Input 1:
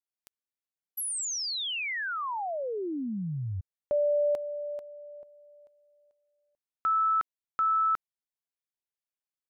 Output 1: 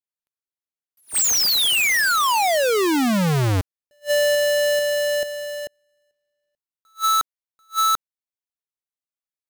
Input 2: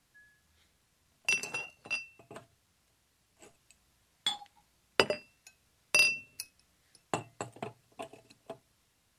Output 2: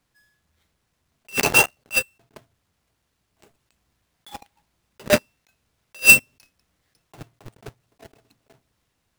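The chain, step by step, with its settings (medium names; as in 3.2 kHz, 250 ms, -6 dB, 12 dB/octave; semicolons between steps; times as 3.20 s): square wave that keeps the level; waveshaping leveller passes 5; attacks held to a fixed rise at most 390 dB/s; trim +4.5 dB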